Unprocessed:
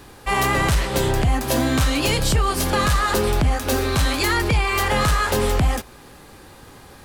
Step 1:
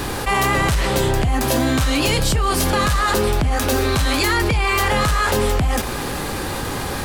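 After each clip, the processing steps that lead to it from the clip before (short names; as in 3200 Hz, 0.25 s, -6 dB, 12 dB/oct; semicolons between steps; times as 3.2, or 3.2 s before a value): fast leveller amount 70%; gain -1.5 dB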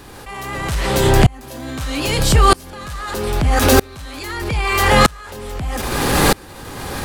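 maximiser +15 dB; dB-ramp tremolo swelling 0.79 Hz, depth 30 dB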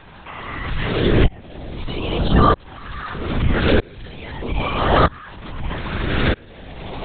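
LFO notch saw up 0.39 Hz 370–2700 Hz; LPC vocoder at 8 kHz whisper; gain -2 dB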